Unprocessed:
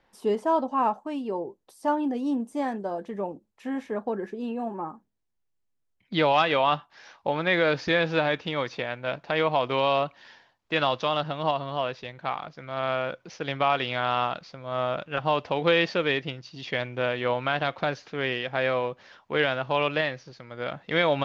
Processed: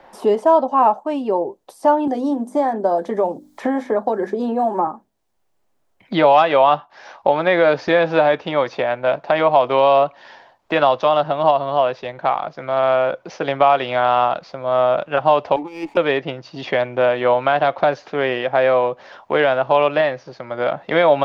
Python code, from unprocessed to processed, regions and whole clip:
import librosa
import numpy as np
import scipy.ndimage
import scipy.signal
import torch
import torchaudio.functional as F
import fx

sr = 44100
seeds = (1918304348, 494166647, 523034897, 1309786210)

y = fx.chain(x, sr, fx.peak_eq(hz=2700.0, db=-14.0, octaves=0.23),
    fx.hum_notches(base_hz=50, count=6),
    fx.band_squash(depth_pct=100), at=(2.07, 4.87))
y = fx.chain(y, sr, fx.over_compress(threshold_db=-23.0, ratio=-0.5),
    fx.vowel_filter(vowel='u'),
    fx.running_max(window=5), at=(15.56, 15.97))
y = fx.peak_eq(y, sr, hz=660.0, db=13.0, octaves=2.1)
y = fx.notch(y, sr, hz=470.0, q=12.0)
y = fx.band_squash(y, sr, depth_pct=40)